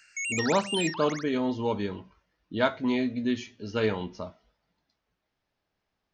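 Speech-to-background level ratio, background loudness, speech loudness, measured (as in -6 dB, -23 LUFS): 3.0 dB, -32.0 LUFS, -29.0 LUFS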